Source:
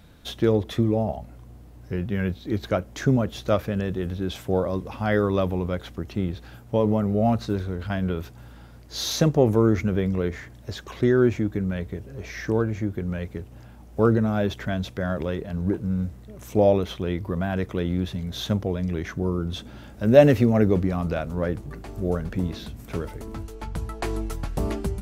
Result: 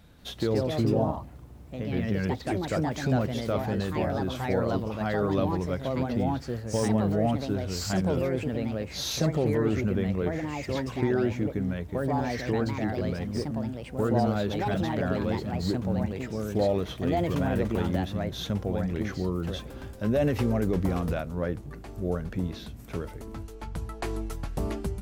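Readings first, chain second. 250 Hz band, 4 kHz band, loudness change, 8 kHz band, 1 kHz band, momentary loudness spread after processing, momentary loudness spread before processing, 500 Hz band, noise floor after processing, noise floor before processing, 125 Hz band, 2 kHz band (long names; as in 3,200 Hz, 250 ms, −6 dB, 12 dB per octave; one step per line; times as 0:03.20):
−3.5 dB, −2.5 dB, −4.0 dB, −1.0 dB, −0.5 dB, 10 LU, 15 LU, −5.0 dB, −44 dBFS, −46 dBFS, −3.5 dB, −3.0 dB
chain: brickwall limiter −13 dBFS, peak gain reduction 11 dB
delay with pitch and tempo change per echo 187 ms, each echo +3 semitones, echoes 2
level −4 dB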